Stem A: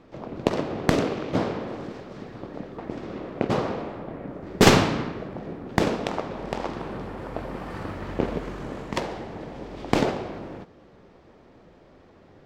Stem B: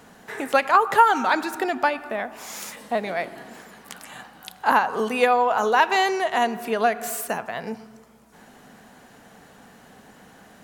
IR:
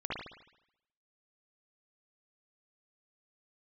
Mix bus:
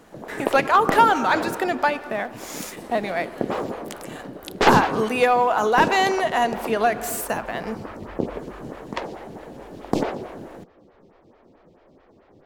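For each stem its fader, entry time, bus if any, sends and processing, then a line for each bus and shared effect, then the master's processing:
+1.0 dB, 0.00 s, no send, photocell phaser 4.6 Hz
-2.5 dB, 0.00 s, no send, sample leveller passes 1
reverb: off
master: dry

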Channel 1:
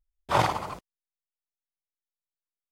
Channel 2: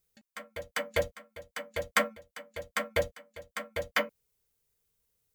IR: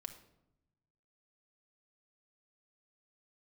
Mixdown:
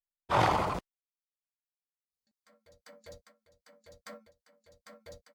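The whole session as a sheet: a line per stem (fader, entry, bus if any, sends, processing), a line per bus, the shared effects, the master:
+3.0 dB, 0.00 s, no send, expander -40 dBFS; compressor, threshold -23 dBFS, peak gain reduction 6.5 dB
-18.5 dB, 2.10 s, no send, resonant high shelf 3600 Hz +6.5 dB, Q 3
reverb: off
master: high shelf 5500 Hz -8.5 dB; transient shaper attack -5 dB, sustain +7 dB

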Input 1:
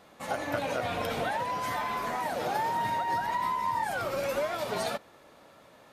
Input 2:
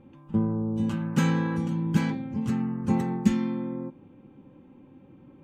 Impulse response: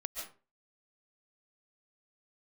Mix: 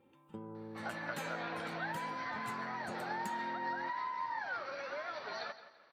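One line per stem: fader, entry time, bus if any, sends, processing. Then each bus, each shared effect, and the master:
-3.0 dB, 0.55 s, no send, echo send -14 dB, rippled Chebyshev low-pass 6000 Hz, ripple 9 dB
-9.0 dB, 0.00 s, send -19 dB, no echo send, high shelf 5400 Hz +11.5 dB; comb 2.2 ms, depth 38%; compressor, threshold -27 dBFS, peak gain reduction 10 dB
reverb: on, RT60 0.35 s, pre-delay 0.1 s
echo: feedback echo 0.169 s, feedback 33%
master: HPF 500 Hz 6 dB/oct; bell 6000 Hz -6.5 dB 0.49 oct

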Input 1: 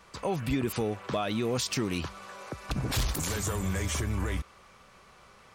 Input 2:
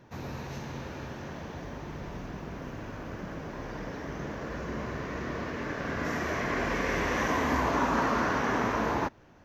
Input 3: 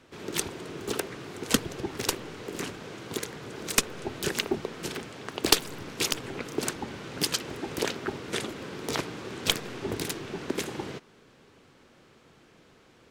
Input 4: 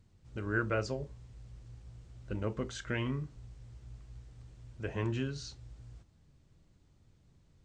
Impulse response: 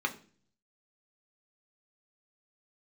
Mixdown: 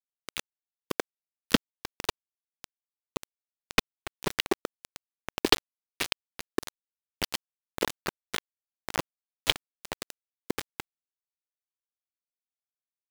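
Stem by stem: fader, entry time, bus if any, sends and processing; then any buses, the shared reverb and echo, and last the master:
-19.5 dB, 0.25 s, no send, dry
-10.0 dB, 1.80 s, no send, dry
+2.5 dB, 0.00 s, no send, dry
-14.0 dB, 2.25 s, no send, dry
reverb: off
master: LPF 4400 Hz 24 dB/oct; sample gate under -19.5 dBFS

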